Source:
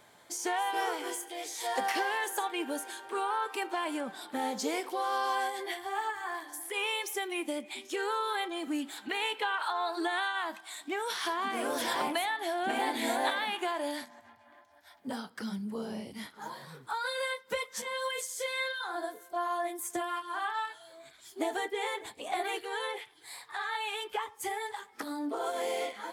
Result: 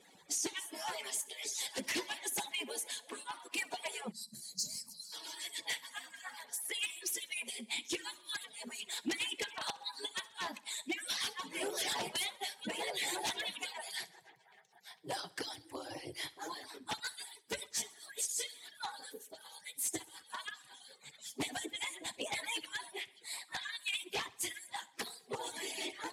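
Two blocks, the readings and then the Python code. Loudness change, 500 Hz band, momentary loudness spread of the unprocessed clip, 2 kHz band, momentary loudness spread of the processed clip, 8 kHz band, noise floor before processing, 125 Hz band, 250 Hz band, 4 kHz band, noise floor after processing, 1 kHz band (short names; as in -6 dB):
-5.5 dB, -11.0 dB, 9 LU, -6.5 dB, 10 LU, +3.0 dB, -59 dBFS, -3.5 dB, -9.5 dB, -0.5 dB, -64 dBFS, -13.5 dB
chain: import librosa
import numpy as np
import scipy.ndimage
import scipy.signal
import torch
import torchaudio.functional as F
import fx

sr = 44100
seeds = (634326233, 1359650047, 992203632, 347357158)

p1 = fx.hpss_only(x, sr, part='percussive')
p2 = fx.rider(p1, sr, range_db=5, speed_s=2.0)
p3 = p1 + (p2 * librosa.db_to_amplitude(-2.0))
p4 = 10.0 ** (-27.5 / 20.0) * (np.abs((p3 / 10.0 ** (-27.5 / 20.0) + 3.0) % 4.0 - 2.0) - 1.0)
p5 = scipy.signal.sosfilt(scipy.signal.butter(2, 11000.0, 'lowpass', fs=sr, output='sos'), p4)
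p6 = fx.peak_eq(p5, sr, hz=550.0, db=-4.5, octaves=0.51)
p7 = fx.echo_feedback(p6, sr, ms=65, feedback_pct=54, wet_db=-21.0)
p8 = fx.spec_box(p7, sr, start_s=4.12, length_s=1.01, low_hz=270.0, high_hz=3900.0, gain_db=-27)
p9 = scipy.signal.sosfilt(scipy.signal.butter(2, 100.0, 'highpass', fs=sr, output='sos'), p8)
y = fx.peak_eq(p9, sr, hz=1300.0, db=-10.5, octaves=0.77)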